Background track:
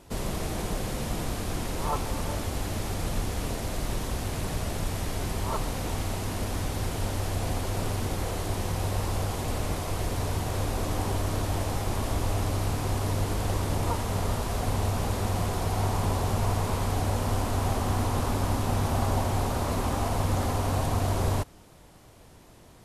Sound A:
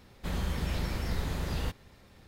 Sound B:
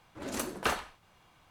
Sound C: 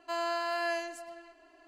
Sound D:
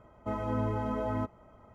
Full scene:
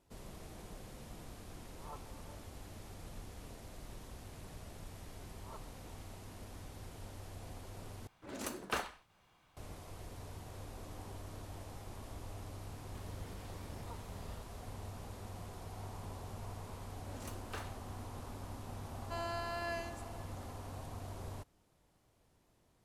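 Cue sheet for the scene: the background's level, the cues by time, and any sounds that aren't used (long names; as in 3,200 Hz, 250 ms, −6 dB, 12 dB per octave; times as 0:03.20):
background track −19.5 dB
0:08.07: overwrite with B −6.5 dB
0:12.71: mix in A −9 dB + downward compressor, threshold −40 dBFS
0:16.88: mix in B −14 dB + soft clipping −23 dBFS
0:19.02: mix in C −8 dB
not used: D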